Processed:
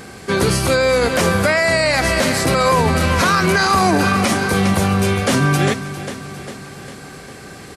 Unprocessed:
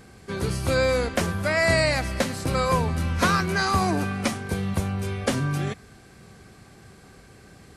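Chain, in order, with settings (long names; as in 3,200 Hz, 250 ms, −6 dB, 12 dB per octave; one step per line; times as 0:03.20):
low-shelf EQ 130 Hz −11.5 dB
on a send: repeating echo 401 ms, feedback 57%, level −14.5 dB
on the sum: boost into a limiter +20 dB
level −5 dB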